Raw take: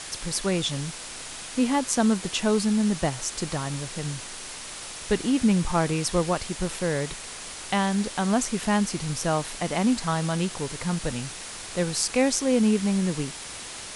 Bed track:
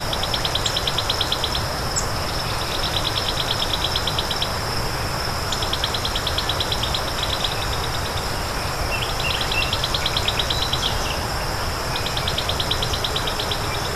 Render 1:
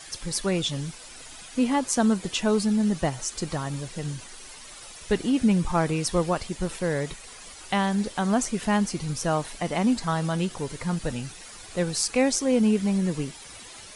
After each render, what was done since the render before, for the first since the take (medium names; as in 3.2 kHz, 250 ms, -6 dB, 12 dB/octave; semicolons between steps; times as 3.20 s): noise reduction 11 dB, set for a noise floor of -39 dBFS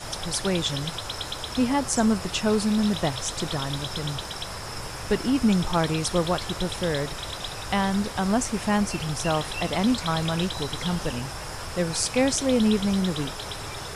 add bed track -11.5 dB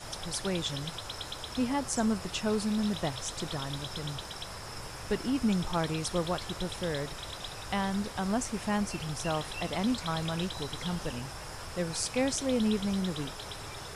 trim -7 dB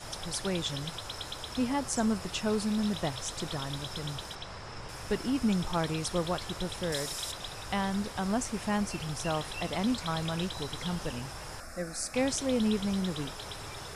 4.35–4.89 s: distance through air 86 m; 6.92–7.32 s: tone controls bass -4 dB, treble +12 dB; 11.60–12.14 s: static phaser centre 630 Hz, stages 8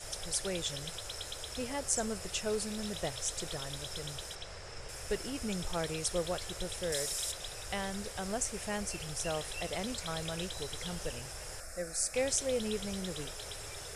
graphic EQ 125/250/500/1000/4000/8000 Hz -5/-12/+4/-10/-4/+5 dB